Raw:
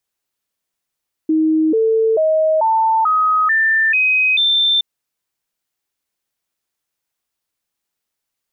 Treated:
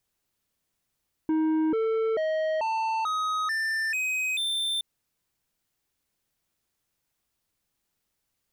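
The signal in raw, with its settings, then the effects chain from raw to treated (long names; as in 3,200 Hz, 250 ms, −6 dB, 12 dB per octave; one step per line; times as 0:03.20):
stepped sweep 315 Hz up, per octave 2, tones 8, 0.44 s, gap 0.00 s −11.5 dBFS
brickwall limiter −17.5 dBFS
soft clipping −27 dBFS
low-shelf EQ 250 Hz +10.5 dB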